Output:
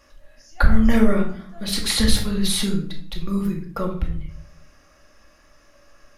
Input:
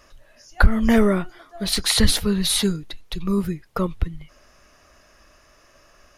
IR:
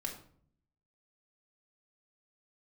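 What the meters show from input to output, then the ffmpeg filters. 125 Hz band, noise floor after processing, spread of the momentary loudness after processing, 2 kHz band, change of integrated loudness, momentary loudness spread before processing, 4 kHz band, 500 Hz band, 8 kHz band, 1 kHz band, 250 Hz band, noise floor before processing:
0.0 dB, -55 dBFS, 15 LU, -2.0 dB, -1.0 dB, 14 LU, -2.0 dB, -2.5 dB, -2.5 dB, -1.5 dB, +0.5 dB, -55 dBFS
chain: -filter_complex "[1:a]atrim=start_sample=2205[a];[0:a][a]afir=irnorm=-1:irlink=0,volume=-1.5dB"

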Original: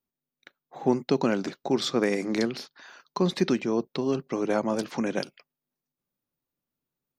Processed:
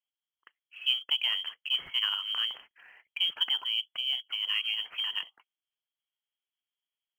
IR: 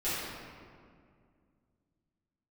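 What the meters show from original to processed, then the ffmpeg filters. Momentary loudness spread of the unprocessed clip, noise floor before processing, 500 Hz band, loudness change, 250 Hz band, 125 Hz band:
7 LU, under -85 dBFS, under -35 dB, -1.5 dB, under -40 dB, under -35 dB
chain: -af "lowpass=f=2.9k:t=q:w=0.5098,lowpass=f=2.9k:t=q:w=0.6013,lowpass=f=2.9k:t=q:w=0.9,lowpass=f=2.9k:t=q:w=2.563,afreqshift=-3400,acrusher=bits=8:mode=log:mix=0:aa=0.000001,lowshelf=f=300:g=-10.5,volume=-5dB"

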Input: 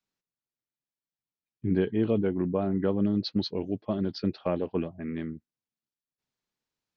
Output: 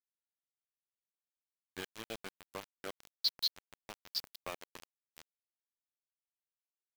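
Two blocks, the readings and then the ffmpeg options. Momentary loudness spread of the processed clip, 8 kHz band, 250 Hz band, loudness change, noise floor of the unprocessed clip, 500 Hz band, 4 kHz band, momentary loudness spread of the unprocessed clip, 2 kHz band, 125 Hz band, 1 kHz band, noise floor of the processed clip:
20 LU, n/a, -29.5 dB, -10.5 dB, under -85 dBFS, -21.5 dB, +3.5 dB, 9 LU, -4.5 dB, -30.0 dB, -10.5 dB, under -85 dBFS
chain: -af "aderivative,aeval=exprs='val(0)*gte(abs(val(0)),0.00596)':c=same,volume=8.5dB"

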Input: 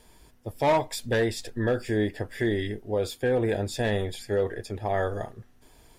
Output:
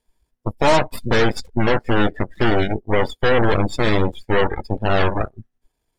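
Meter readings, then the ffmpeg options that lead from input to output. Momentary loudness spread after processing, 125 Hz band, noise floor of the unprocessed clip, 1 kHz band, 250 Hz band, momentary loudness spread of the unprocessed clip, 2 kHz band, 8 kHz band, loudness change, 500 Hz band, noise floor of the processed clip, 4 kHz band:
6 LU, +8.5 dB, -57 dBFS, +10.0 dB, +8.0 dB, 7 LU, +10.5 dB, n/a, +8.0 dB, +6.5 dB, -76 dBFS, +10.0 dB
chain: -af "aeval=exprs='0.188*(cos(1*acos(clip(val(0)/0.188,-1,1)))-cos(1*PI/2))+0.075*(cos(8*acos(clip(val(0)/0.188,-1,1)))-cos(8*PI/2))':c=same,afftdn=nr=25:nf=-30,volume=5.5dB"

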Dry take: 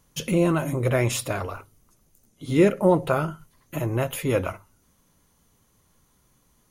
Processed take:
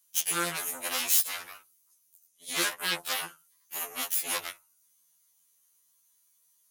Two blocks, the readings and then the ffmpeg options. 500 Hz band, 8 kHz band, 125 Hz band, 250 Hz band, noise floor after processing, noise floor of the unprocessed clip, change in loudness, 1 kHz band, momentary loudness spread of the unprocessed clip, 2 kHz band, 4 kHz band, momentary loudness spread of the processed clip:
-20.0 dB, +6.5 dB, -27.0 dB, -21.0 dB, -69 dBFS, -65 dBFS, -5.0 dB, -7.0 dB, 14 LU, -1.0 dB, +5.5 dB, 16 LU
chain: -af "aeval=exprs='0.422*(cos(1*acos(clip(val(0)/0.422,-1,1)))-cos(1*PI/2))+0.075*(cos(3*acos(clip(val(0)/0.422,-1,1)))-cos(3*PI/2))+0.106*(cos(8*acos(clip(val(0)/0.422,-1,1)))-cos(8*PI/2))':c=same,aderivative,afftfilt=real='re*2*eq(mod(b,4),0)':imag='im*2*eq(mod(b,4),0)':win_size=2048:overlap=0.75,volume=8dB"

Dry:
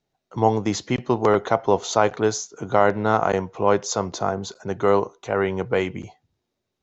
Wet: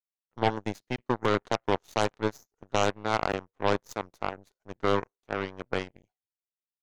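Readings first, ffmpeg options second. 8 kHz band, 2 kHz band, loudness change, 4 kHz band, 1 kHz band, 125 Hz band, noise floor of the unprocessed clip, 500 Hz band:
n/a, -5.0 dB, -8.0 dB, -3.0 dB, -8.0 dB, -7.5 dB, -80 dBFS, -9.5 dB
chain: -af "aeval=exprs='0.708*(cos(1*acos(clip(val(0)/0.708,-1,1)))-cos(1*PI/2))+0.00501*(cos(3*acos(clip(val(0)/0.708,-1,1)))-cos(3*PI/2))+0.0891*(cos(4*acos(clip(val(0)/0.708,-1,1)))-cos(4*PI/2))+0.178*(cos(5*acos(clip(val(0)/0.708,-1,1)))-cos(5*PI/2))+0.224*(cos(7*acos(clip(val(0)/0.708,-1,1)))-cos(7*PI/2))':c=same,volume=-8.5dB"

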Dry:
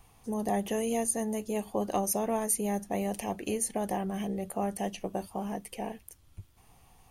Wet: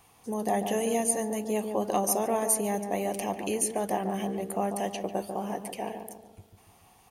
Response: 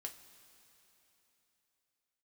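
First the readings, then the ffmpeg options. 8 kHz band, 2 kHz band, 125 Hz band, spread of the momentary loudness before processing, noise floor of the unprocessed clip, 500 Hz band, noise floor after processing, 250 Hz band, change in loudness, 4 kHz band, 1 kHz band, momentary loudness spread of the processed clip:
+3.0 dB, +3.5 dB, 0.0 dB, 9 LU, -61 dBFS, +3.5 dB, -60 dBFS, +0.5 dB, +2.5 dB, +3.5 dB, +4.0 dB, 10 LU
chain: -filter_complex "[0:a]highpass=f=240:p=1,asplit=2[a][b];[b]adelay=144,lowpass=f=1.2k:p=1,volume=-6dB,asplit=2[c][d];[d]adelay=144,lowpass=f=1.2k:p=1,volume=0.5,asplit=2[e][f];[f]adelay=144,lowpass=f=1.2k:p=1,volume=0.5,asplit=2[g][h];[h]adelay=144,lowpass=f=1.2k:p=1,volume=0.5,asplit=2[i][j];[j]adelay=144,lowpass=f=1.2k:p=1,volume=0.5,asplit=2[k][l];[l]adelay=144,lowpass=f=1.2k:p=1,volume=0.5[m];[a][c][e][g][i][k][m]amix=inputs=7:normalize=0,asplit=2[n][o];[1:a]atrim=start_sample=2205[p];[o][p]afir=irnorm=-1:irlink=0,volume=-16dB[q];[n][q]amix=inputs=2:normalize=0,volume=2.5dB"

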